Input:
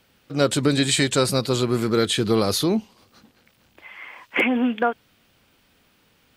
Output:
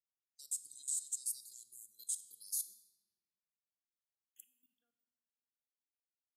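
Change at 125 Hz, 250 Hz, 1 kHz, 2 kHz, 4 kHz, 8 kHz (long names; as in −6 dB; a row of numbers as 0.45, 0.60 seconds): below −40 dB, below −40 dB, below −40 dB, below −40 dB, −31.5 dB, −9.5 dB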